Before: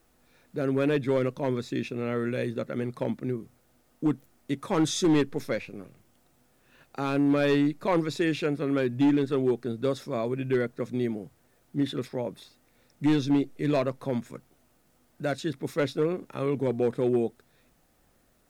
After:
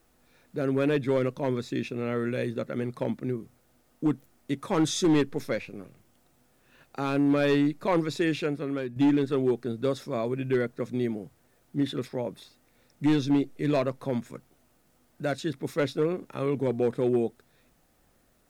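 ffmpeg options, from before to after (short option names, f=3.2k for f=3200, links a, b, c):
-filter_complex "[0:a]asplit=2[a][b];[a]atrim=end=8.96,asetpts=PTS-STARTPTS,afade=t=out:st=8.34:d=0.62:silence=0.354813[c];[b]atrim=start=8.96,asetpts=PTS-STARTPTS,afade=t=in:d=0.004:c=hsin:silence=0.354813[d];[c][d]concat=n=2:v=0:a=1"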